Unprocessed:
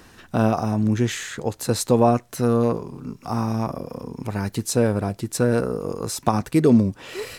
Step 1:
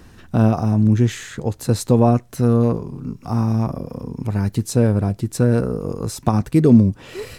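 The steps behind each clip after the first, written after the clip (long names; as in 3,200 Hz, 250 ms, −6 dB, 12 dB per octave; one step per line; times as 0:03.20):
low-shelf EQ 260 Hz +12 dB
level −2.5 dB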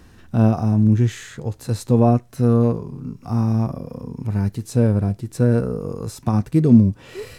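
harmonic and percussive parts rebalanced harmonic +8 dB
level −8 dB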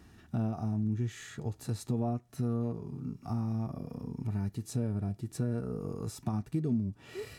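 notch comb filter 520 Hz
downward compressor 3 to 1, threshold −24 dBFS, peak gain reduction 13 dB
level −7 dB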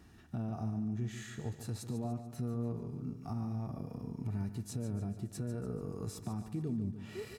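brickwall limiter −27 dBFS, peak gain reduction 6 dB
on a send: repeating echo 145 ms, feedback 49%, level −10.5 dB
on the sum: level −2.5 dB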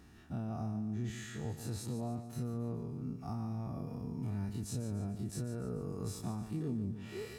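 every bin's largest magnitude spread in time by 60 ms
level −3 dB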